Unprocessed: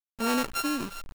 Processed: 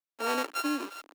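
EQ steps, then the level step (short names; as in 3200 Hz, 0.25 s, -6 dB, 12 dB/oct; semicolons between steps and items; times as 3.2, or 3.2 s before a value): elliptic high-pass 290 Hz, stop band 60 dB; high shelf 5100 Hz -6 dB; 0.0 dB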